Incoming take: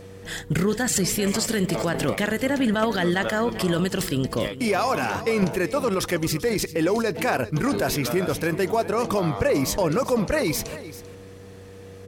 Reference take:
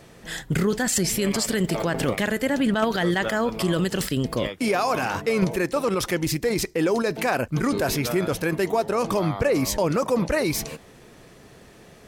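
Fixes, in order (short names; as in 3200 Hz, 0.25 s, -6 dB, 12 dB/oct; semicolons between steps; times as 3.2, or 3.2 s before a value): de-hum 95.8 Hz, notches 5; notch 480 Hz, Q 30; inverse comb 0.392 s -15.5 dB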